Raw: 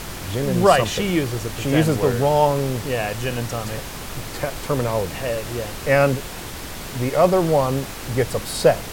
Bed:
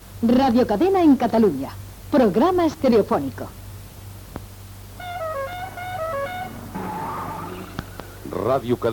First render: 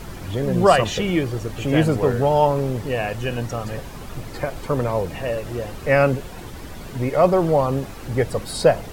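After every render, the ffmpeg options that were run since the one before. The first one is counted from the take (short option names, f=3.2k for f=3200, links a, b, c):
-af "afftdn=nr=10:nf=-33"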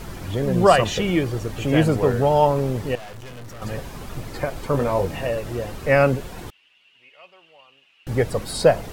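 -filter_complex "[0:a]asettb=1/sr,asplit=3[a][b][c];[a]atrim=end=2.954[d];[b]atrim=start=2.95:end=3.62,asetpts=PTS-STARTPTS,afade=t=in:d=0.004:c=qsin,afade=t=out:st=0.666:d=0.004:c=qsin,aeval=exprs='(tanh(70.8*val(0)+0.75)-tanh(0.75))/70.8':c=same[e];[c]atrim=start=3.616[f];[d][e]acrossfade=d=0.004:c1=hsin:c2=qsin[g];[g][f]acrossfade=d=0.004:c1=qsin:c2=hsin,asettb=1/sr,asplit=3[h][i][j];[h]atrim=end=4.724[k];[i]atrim=start=4.72:end=5.27,asetpts=PTS-STARTPTS,afade=t=in:d=0.004:c=qsin,afade=t=out:st=0.546:d=0.004:c=qsin,asplit=2[l][m];[m]adelay=21,volume=-5dB[n];[l][n]amix=inputs=2:normalize=0,atrim=end_sample=24255[o];[j]atrim=start=5.266[p];[k][o]acrossfade=d=0.004:c1=hsin:c2=qsin[q];[q][p]acrossfade=d=0.004:c1=qsin:c2=hsin,asettb=1/sr,asplit=3[r][s][t];[r]atrim=end=6.504[u];[s]atrim=start=6.5:end=8.07,asetpts=PTS-STARTPTS,afade=t=in:d=0.004:c=qsin,afade=t=out:st=1.566:d=0.004:c=qsin,bandpass=f=2.8k:t=q:w=13[v];[t]atrim=start=8.066[w];[u][v]acrossfade=d=0.004:c1=hsin:c2=qsin[x];[x][w]acrossfade=d=0.004:c1=qsin:c2=hsin"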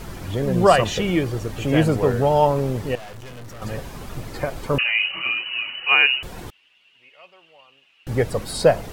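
-filter_complex "[0:a]asettb=1/sr,asplit=3[a][b][c];[a]atrim=end=4.784[d];[b]atrim=start=4.78:end=6.23,asetpts=PTS-STARTPTS,afade=t=in:d=0.004:c=qsin,afade=t=out:st=1.446:d=0.004:c=qsin,lowpass=f=2.6k:t=q:w=0.5098,lowpass=f=2.6k:t=q:w=0.6013,lowpass=f=2.6k:t=q:w=0.9,lowpass=f=2.6k:t=q:w=2.563,afreqshift=-3000[e];[c]atrim=start=6.226[f];[d][e]acrossfade=d=0.004:c1=hsin:c2=qsin[g];[g][f]acrossfade=d=0.004:c1=qsin:c2=hsin"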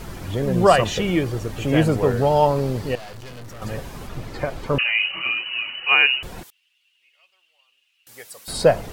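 -filter_complex "[0:a]asettb=1/sr,asplit=3[a][b][c];[a]atrim=end=2.174[d];[b]atrim=start=2.17:end=3.42,asetpts=PTS-STARTPTS,afade=t=in:d=0.004:c=qsin,afade=t=out:st=1.246:d=0.004:c=qsin,equalizer=f=4.5k:w=4.2:g=6.5[e];[c]atrim=start=3.416[f];[d][e]acrossfade=d=0.004:c1=hsin:c2=qsin[g];[g][f]acrossfade=d=0.004:c1=qsin:c2=hsin,asettb=1/sr,asplit=3[h][i][j];[h]atrim=end=4.074[k];[i]atrim=start=4.07:end=4.79,asetpts=PTS-STARTPTS,afade=t=in:d=0.004:c=qsin,afade=t=out:st=0.716:d=0.004:c=qsin,acrossover=split=5900[l][m];[m]acompressor=threshold=-54dB:ratio=4:attack=1:release=60[n];[l][n]amix=inputs=2:normalize=0[o];[j]atrim=start=4.786[p];[k][o]acrossfade=d=0.004:c1=hsin:c2=qsin[q];[q][p]acrossfade=d=0.004:c1=qsin:c2=hsin,asettb=1/sr,asplit=3[r][s][t];[r]atrim=end=6.434[u];[s]atrim=start=6.43:end=8.48,asetpts=PTS-STARTPTS,afade=t=in:d=0.004:c=qsin,afade=t=out:st=2.046:d=0.004:c=qsin,aderivative[v];[t]atrim=start=8.476[w];[u][v]acrossfade=d=0.004:c1=hsin:c2=qsin[x];[x][w]acrossfade=d=0.004:c1=qsin:c2=hsin"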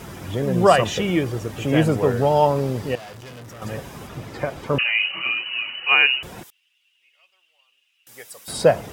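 -af "highpass=84,bandreject=f=4.3k:w=11"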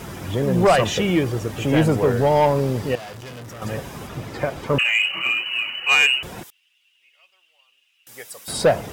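-filter_complex "[0:a]asplit=2[a][b];[b]acrusher=bits=5:mode=log:mix=0:aa=0.000001,volume=-9dB[c];[a][c]amix=inputs=2:normalize=0,asoftclip=type=tanh:threshold=-9dB"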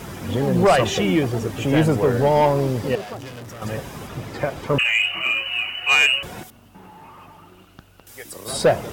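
-filter_complex "[1:a]volume=-15dB[a];[0:a][a]amix=inputs=2:normalize=0"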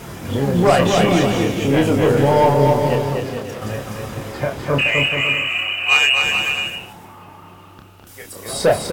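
-filter_complex "[0:a]asplit=2[a][b];[b]adelay=29,volume=-5dB[c];[a][c]amix=inputs=2:normalize=0,asplit=2[d][e];[e]aecho=0:1:250|425|547.5|633.2|693.3:0.631|0.398|0.251|0.158|0.1[f];[d][f]amix=inputs=2:normalize=0"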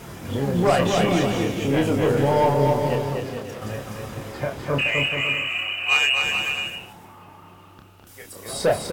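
-af "volume=-5dB"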